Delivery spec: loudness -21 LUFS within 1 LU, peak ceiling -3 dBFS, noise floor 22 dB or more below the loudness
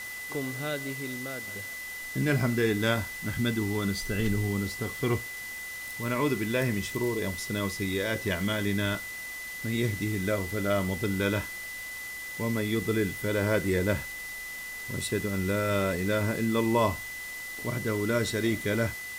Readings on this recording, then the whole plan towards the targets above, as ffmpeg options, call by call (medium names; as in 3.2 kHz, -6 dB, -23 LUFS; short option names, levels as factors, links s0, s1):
steady tone 2 kHz; tone level -37 dBFS; noise floor -39 dBFS; noise floor target -52 dBFS; loudness -29.5 LUFS; peak level -12.0 dBFS; loudness target -21.0 LUFS
-> -af "bandreject=f=2000:w=30"
-af "afftdn=nr=13:nf=-39"
-af "volume=2.66"